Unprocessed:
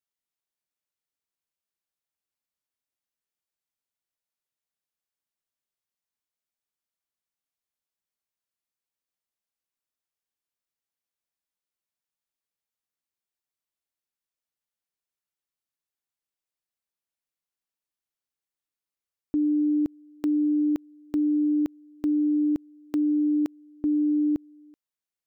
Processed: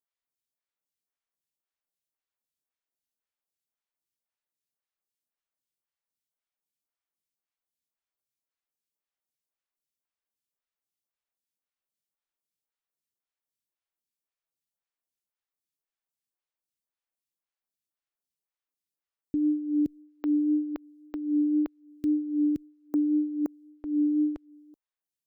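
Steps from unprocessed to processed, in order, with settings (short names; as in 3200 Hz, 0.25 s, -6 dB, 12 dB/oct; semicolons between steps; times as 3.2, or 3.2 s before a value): photocell phaser 1.9 Hz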